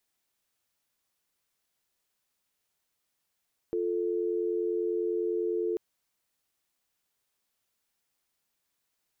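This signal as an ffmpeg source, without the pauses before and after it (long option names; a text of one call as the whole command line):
ffmpeg -f lavfi -i "aevalsrc='0.0335*(sin(2*PI*350*t)+sin(2*PI*440*t))':duration=2.04:sample_rate=44100" out.wav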